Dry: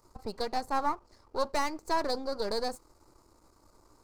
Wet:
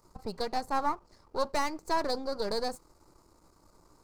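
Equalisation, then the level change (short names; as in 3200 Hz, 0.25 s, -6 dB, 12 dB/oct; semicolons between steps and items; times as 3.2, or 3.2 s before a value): bell 170 Hz +9 dB 0.22 oct; 0.0 dB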